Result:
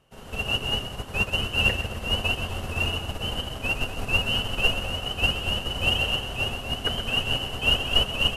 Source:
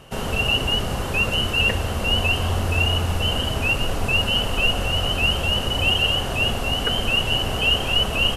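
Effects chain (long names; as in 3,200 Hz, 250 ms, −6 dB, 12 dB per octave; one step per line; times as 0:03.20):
echo with a time of its own for lows and highs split 1,200 Hz, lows 225 ms, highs 128 ms, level −6 dB
expander for the loud parts 2.5 to 1, over −27 dBFS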